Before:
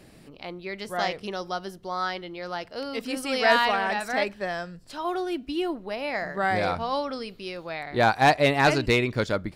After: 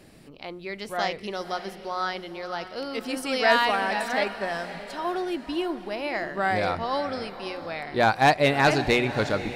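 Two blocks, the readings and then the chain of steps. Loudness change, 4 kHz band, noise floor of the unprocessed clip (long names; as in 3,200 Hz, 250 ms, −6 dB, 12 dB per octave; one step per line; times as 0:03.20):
0.0 dB, +0.5 dB, −51 dBFS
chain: mains-hum notches 60/120/180 Hz
feedback delay with all-pass diffusion 552 ms, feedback 42%, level −12.5 dB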